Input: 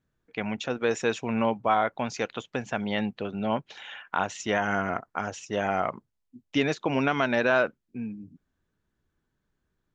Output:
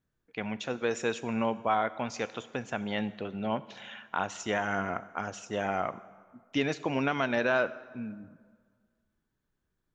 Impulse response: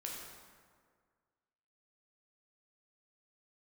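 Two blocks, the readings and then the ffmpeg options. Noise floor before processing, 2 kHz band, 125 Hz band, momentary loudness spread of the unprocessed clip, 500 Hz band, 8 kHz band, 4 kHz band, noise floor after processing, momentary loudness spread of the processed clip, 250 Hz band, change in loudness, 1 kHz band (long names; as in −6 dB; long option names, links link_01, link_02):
−79 dBFS, −3.5 dB, −4.0 dB, 13 LU, −4.0 dB, can't be measured, −3.5 dB, −81 dBFS, 12 LU, −4.0 dB, −4.0 dB, −4.0 dB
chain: -filter_complex "[0:a]asplit=2[link_01][link_02];[1:a]atrim=start_sample=2205,highshelf=frequency=5600:gain=11[link_03];[link_02][link_03]afir=irnorm=-1:irlink=0,volume=-12.5dB[link_04];[link_01][link_04]amix=inputs=2:normalize=0,volume=-5dB"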